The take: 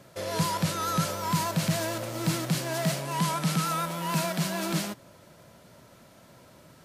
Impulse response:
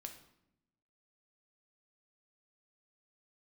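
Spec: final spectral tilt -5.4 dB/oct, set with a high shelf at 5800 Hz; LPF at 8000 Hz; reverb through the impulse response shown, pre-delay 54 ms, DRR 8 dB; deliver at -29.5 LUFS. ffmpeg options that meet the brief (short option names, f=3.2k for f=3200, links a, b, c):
-filter_complex "[0:a]lowpass=8k,highshelf=f=5.8k:g=-8,asplit=2[a][b];[1:a]atrim=start_sample=2205,adelay=54[c];[b][c]afir=irnorm=-1:irlink=0,volume=-3.5dB[d];[a][d]amix=inputs=2:normalize=0,volume=-0.5dB"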